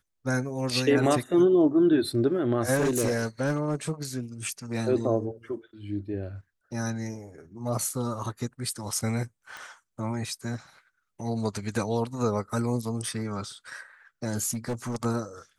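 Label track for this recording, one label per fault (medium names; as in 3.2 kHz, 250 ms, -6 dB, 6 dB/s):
2.740000	3.910000	clipped -20.5 dBFS
9.570000	9.570000	pop
14.500000	15.060000	clipped -26 dBFS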